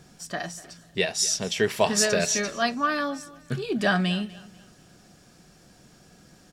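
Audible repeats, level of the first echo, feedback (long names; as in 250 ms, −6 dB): 2, −20.0 dB, 33%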